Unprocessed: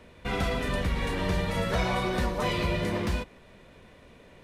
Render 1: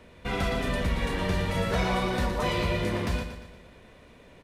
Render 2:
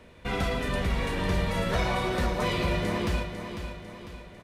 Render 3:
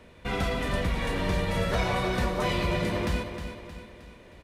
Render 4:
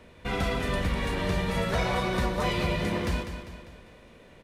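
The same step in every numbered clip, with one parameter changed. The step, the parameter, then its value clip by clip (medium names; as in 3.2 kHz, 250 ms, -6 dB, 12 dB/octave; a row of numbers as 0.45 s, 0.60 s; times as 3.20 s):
feedback delay, time: 117 ms, 499 ms, 312 ms, 199 ms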